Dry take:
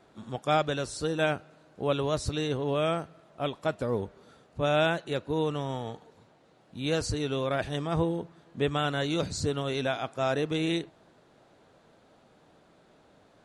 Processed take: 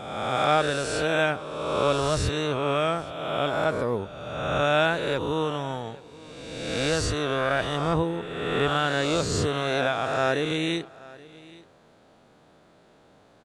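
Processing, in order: spectral swells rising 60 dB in 1.66 s; dynamic EQ 1400 Hz, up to +4 dB, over -39 dBFS, Q 0.86; on a send: echo 0.827 s -21.5 dB

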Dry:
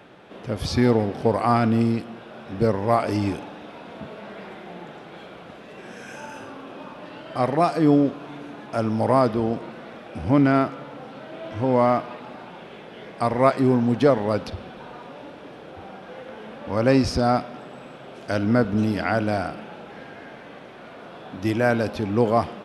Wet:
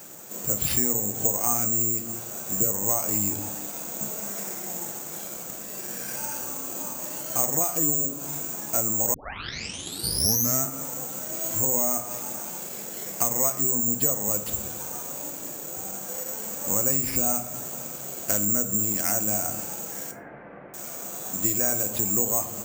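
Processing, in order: careless resampling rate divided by 6×, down none, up zero stuff; 20.11–20.74 steep low-pass 2200 Hz 36 dB/oct; shoebox room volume 290 m³, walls furnished, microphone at 0.8 m; 9.14 tape start 1.49 s; compressor 5:1, threshold -16 dBFS, peak gain reduction 14 dB; gain -3 dB

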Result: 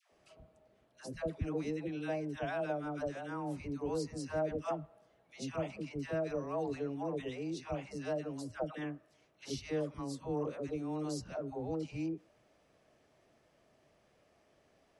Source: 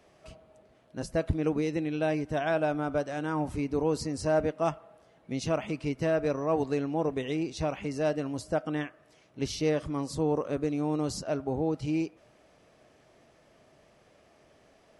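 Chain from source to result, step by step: dispersion lows, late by 0.12 s, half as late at 700 Hz; gain -8.5 dB

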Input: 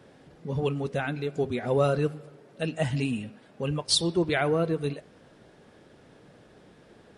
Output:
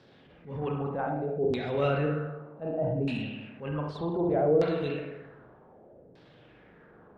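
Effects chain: spring tank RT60 1.1 s, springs 40/57 ms, chirp 20 ms, DRR 1.5 dB; transient shaper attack -8 dB, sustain +2 dB; LFO low-pass saw down 0.65 Hz 450–4800 Hz; gain -4.5 dB

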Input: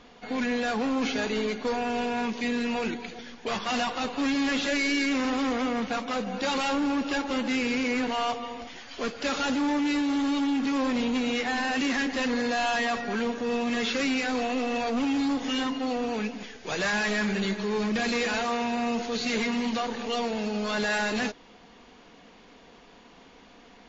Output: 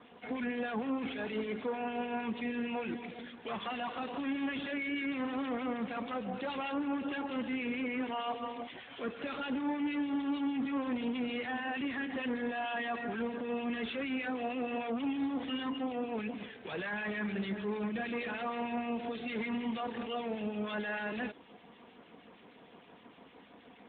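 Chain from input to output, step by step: limiter -27.5 dBFS, peak gain reduction 9.5 dB; harmonic tremolo 6.5 Hz, depth 50%, crossover 1700 Hz; AMR-NB 12.2 kbps 8000 Hz

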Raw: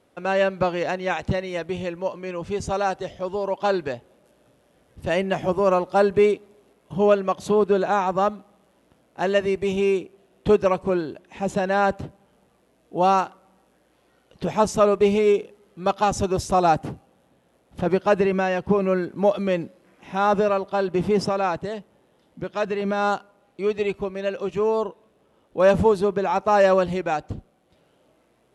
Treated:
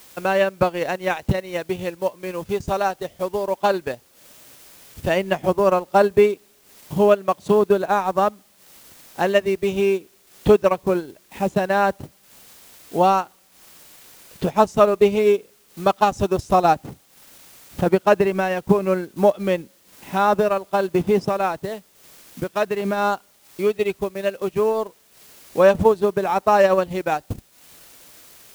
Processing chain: requantised 8-bit, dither triangular; transient shaper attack +4 dB, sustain -10 dB; gain +1 dB

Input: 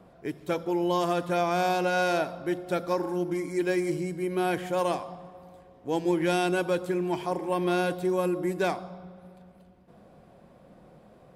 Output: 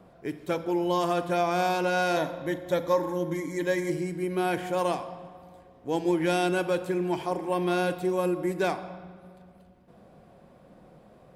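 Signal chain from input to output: 2.16–3.9 ripple EQ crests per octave 1.1, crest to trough 10 dB; reverb RT60 1.3 s, pre-delay 37 ms, DRR 13 dB

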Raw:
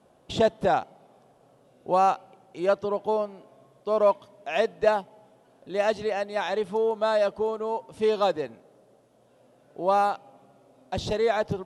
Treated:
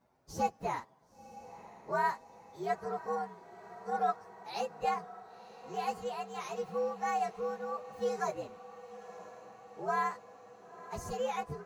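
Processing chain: inharmonic rescaling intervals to 120%; diffused feedback echo 0.987 s, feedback 65%, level -15.5 dB; gain -8 dB

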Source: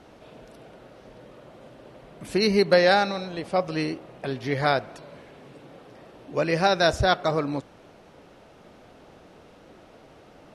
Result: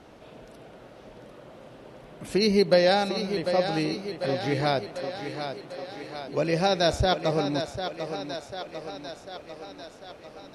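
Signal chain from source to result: dynamic EQ 1400 Hz, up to -8 dB, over -37 dBFS, Q 0.98; thinning echo 0.746 s, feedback 64%, high-pass 180 Hz, level -8 dB

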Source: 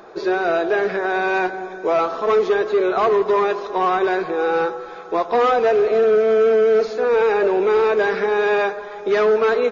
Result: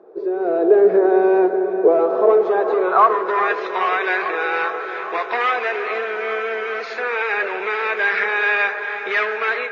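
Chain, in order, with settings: compressor, threshold -18 dBFS, peak gain reduction 5.5 dB; band-pass sweep 420 Hz -> 2100 Hz, 1.98–3.67; AGC gain up to 14 dB; dark delay 0.411 s, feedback 77%, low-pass 3000 Hz, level -12.5 dB

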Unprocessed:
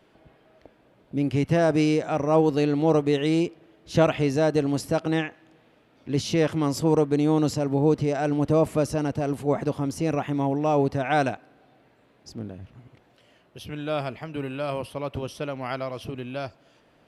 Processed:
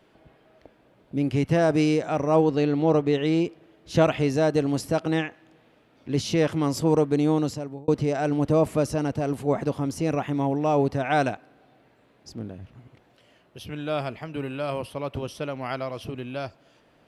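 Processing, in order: 2.44–3.46 air absorption 76 m; 7.28–7.88 fade out

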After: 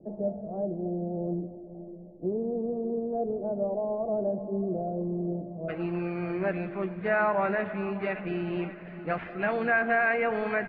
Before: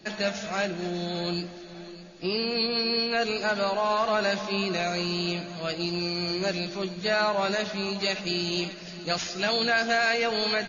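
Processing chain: steep low-pass 670 Hz 36 dB/oct, from 5.68 s 2200 Hz

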